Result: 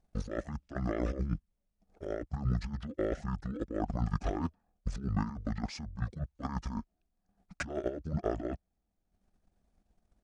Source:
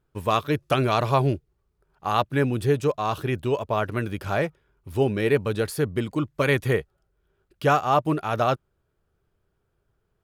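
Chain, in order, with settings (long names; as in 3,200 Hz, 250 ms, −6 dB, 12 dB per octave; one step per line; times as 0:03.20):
transient designer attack +9 dB, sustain −8 dB
compressor whose output falls as the input rises −27 dBFS, ratio −1
pitch shifter −12 semitones
level −7.5 dB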